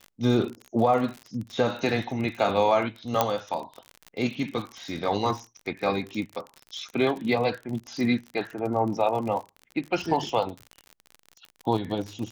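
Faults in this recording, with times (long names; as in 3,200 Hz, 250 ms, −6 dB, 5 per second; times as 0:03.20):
surface crackle 45 per second −32 dBFS
0:03.21: click −6 dBFS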